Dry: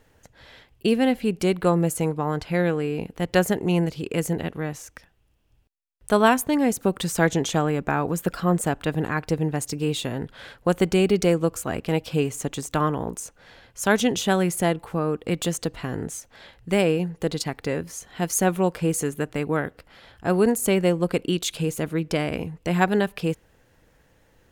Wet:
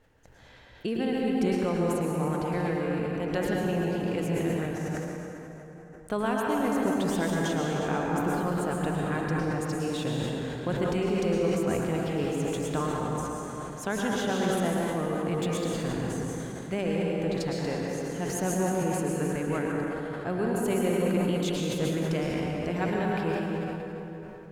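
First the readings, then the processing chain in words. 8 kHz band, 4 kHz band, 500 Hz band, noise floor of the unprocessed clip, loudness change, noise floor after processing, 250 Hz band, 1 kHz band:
-8.5 dB, -6.5 dB, -4.5 dB, -61 dBFS, -5.0 dB, -45 dBFS, -4.0 dB, -4.5 dB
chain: treble shelf 5 kHz -8.5 dB; compression 2:1, threshold -25 dBFS, peak gain reduction 7.5 dB; plate-style reverb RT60 3.7 s, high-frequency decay 0.6×, pre-delay 95 ms, DRR -3 dB; decay stretcher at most 25 dB/s; trim -6 dB

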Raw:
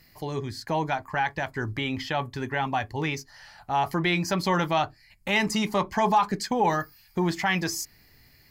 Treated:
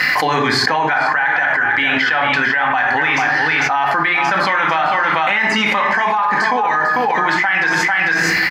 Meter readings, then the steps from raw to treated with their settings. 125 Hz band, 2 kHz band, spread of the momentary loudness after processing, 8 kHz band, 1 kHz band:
+1.0 dB, +18.5 dB, 1 LU, +5.5 dB, +11.5 dB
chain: de-esser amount 85%; band-pass filter 1.6 kHz, Q 2.1; delay 447 ms -9 dB; simulated room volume 790 m³, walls furnished, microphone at 2 m; loudness maximiser +21.5 dB; level flattener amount 100%; trim -9 dB

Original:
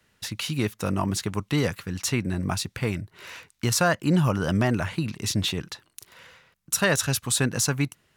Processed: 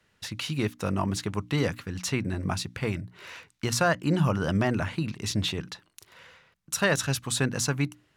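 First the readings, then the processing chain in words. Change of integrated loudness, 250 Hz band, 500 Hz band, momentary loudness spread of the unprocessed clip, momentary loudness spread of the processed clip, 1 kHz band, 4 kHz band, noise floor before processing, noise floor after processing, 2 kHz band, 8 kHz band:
-2.5 dB, -2.5 dB, -1.5 dB, 12 LU, 11 LU, -1.5 dB, -3.0 dB, -68 dBFS, -69 dBFS, -2.0 dB, -5.0 dB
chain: treble shelf 8.9 kHz -9.5 dB; hum notches 60/120/180/240/300 Hz; trim -1.5 dB

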